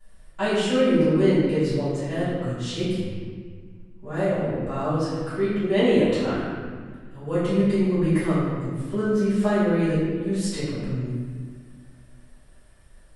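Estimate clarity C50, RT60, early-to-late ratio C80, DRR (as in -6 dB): -2.0 dB, 1.6 s, 0.0 dB, -16.5 dB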